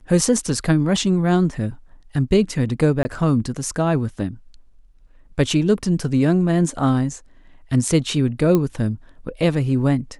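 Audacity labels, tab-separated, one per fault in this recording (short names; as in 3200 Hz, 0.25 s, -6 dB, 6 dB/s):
3.030000	3.050000	gap 20 ms
8.550000	8.550000	pop -7 dBFS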